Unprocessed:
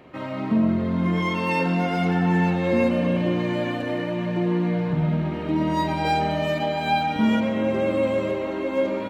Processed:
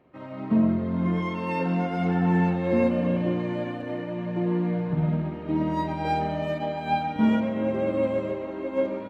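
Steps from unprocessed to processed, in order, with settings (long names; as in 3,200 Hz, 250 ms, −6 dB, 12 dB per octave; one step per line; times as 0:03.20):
high-shelf EQ 2,300 Hz −10 dB
expander for the loud parts 1.5 to 1, over −40 dBFS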